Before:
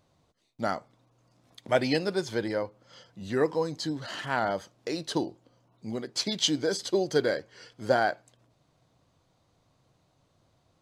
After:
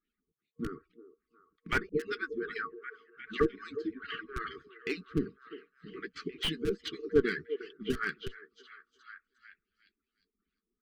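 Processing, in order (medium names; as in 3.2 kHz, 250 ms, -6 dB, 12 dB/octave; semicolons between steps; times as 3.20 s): harmonic-percussive separation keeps percussive; LFO low-pass sine 2.5 Hz 530–2900 Hz; flange 1.3 Hz, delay 2.9 ms, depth 2.3 ms, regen -64%; gate -56 dBFS, range -13 dB; repeats whose band climbs or falls 356 ms, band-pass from 530 Hz, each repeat 0.7 oct, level -9 dB; in parallel at -4 dB: Schmitt trigger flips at -20.5 dBFS; 3.93–4.44 s: on the sum: level-controlled noise filter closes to 1.6 kHz, open at -26.5 dBFS; fifteen-band graphic EQ 160 Hz +5 dB, 630 Hz -11 dB, 10 kHz +3 dB; FFT band-reject 470–1100 Hz; 1.89–3.40 s: phase dispersion highs, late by 54 ms, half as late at 400 Hz; slew-rate limiter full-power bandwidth 57 Hz; trim +5 dB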